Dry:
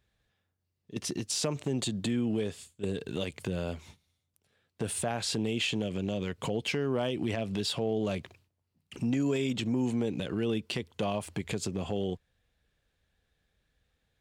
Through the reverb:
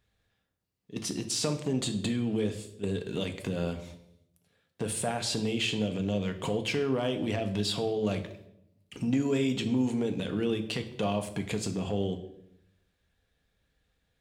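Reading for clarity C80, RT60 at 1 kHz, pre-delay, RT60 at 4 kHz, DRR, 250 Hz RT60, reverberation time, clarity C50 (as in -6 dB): 14.5 dB, 0.65 s, 4 ms, 0.65 s, 5.5 dB, 1.0 s, 0.75 s, 11.5 dB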